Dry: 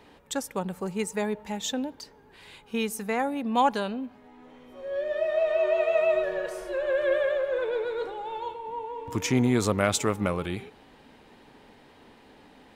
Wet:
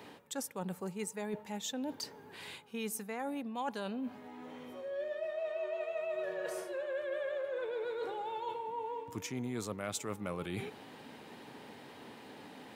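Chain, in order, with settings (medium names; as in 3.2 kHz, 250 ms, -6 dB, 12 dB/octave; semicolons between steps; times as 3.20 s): high-pass 100 Hz 24 dB/octave; treble shelf 9.7 kHz +6.5 dB; reverse; compression 6:1, threshold -39 dBFS, peak gain reduction 19.5 dB; reverse; trim +2.5 dB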